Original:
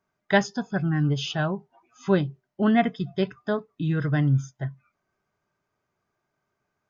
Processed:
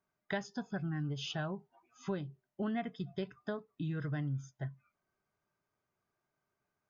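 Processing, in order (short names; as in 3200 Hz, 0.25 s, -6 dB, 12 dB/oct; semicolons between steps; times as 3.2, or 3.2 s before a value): compressor 4:1, threshold -27 dBFS, peak gain reduction 11 dB; gain -7.5 dB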